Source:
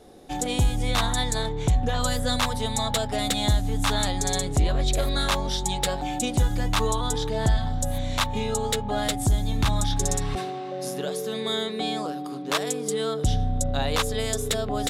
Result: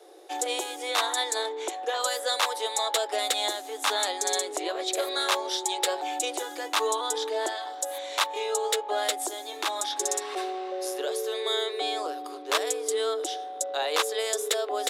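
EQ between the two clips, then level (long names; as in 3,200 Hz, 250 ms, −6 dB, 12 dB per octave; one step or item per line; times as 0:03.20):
Butterworth high-pass 320 Hz 96 dB per octave
0.0 dB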